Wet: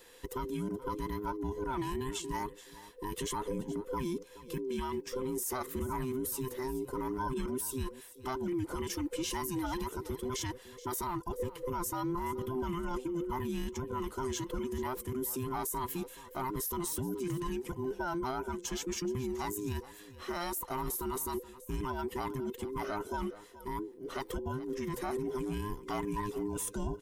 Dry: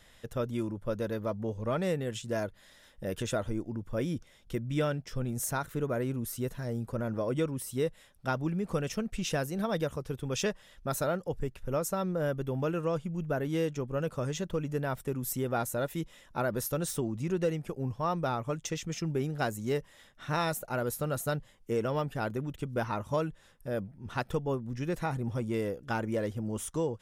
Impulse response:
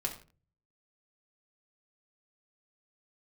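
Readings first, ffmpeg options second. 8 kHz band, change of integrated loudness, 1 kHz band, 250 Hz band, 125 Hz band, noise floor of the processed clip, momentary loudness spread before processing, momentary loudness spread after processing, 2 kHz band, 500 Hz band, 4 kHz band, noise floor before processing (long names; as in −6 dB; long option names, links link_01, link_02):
+0.5 dB, −3.5 dB, −0.5 dB, −2.5 dB, −7.5 dB, −53 dBFS, 5 LU, 5 LU, −6.0 dB, −5.0 dB, −1.5 dB, −59 dBFS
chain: -filter_complex "[0:a]afftfilt=real='real(if(between(b,1,1008),(2*floor((b-1)/24)+1)*24-b,b),0)':imag='imag(if(between(b,1,1008),(2*floor((b-1)/24)+1)*24-b,b),0)*if(between(b,1,1008),-1,1)':win_size=2048:overlap=0.75,highshelf=frequency=9600:gain=12,alimiter=level_in=3.5dB:limit=-24dB:level=0:latency=1:release=14,volume=-3.5dB,asplit=2[link_01][link_02];[link_02]aecho=0:1:426:0.141[link_03];[link_01][link_03]amix=inputs=2:normalize=0"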